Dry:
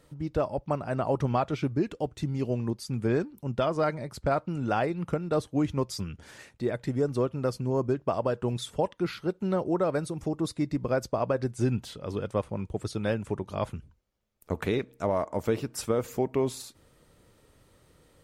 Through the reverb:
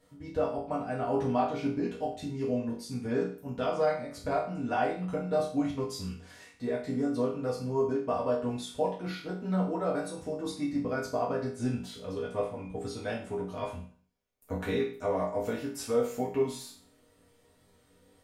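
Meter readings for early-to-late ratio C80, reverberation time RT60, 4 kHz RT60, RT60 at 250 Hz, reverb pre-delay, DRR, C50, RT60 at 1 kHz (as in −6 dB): 10.5 dB, 0.45 s, 0.45 s, 0.45 s, 4 ms, −7.0 dB, 6.5 dB, 0.45 s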